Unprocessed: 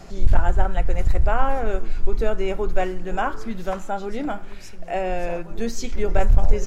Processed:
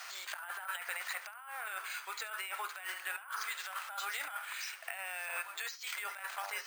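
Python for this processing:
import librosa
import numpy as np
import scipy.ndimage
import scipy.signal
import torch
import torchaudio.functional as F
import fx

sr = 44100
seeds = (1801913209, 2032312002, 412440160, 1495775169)

p1 = scipy.signal.sosfilt(scipy.signal.butter(4, 1200.0, 'highpass', fs=sr, output='sos'), x)
p2 = fx.over_compress(p1, sr, threshold_db=-44.0, ratio=-1.0)
p3 = p2 + fx.echo_single(p2, sr, ms=72, db=-20.5, dry=0)
p4 = np.repeat(scipy.signal.resample_poly(p3, 1, 4), 4)[:len(p3)]
y = p4 * 10.0 ** (2.5 / 20.0)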